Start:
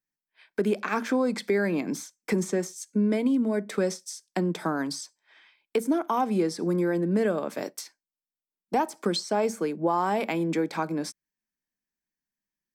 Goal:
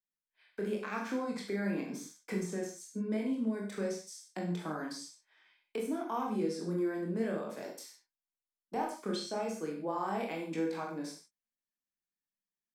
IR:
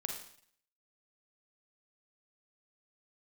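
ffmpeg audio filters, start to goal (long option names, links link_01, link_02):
-filter_complex "[0:a]flanger=delay=18.5:depth=7.7:speed=0.94[link_01];[1:a]atrim=start_sample=2205,afade=type=out:start_time=0.25:duration=0.01,atrim=end_sample=11466,asetrate=52920,aresample=44100[link_02];[link_01][link_02]afir=irnorm=-1:irlink=0,volume=-5dB"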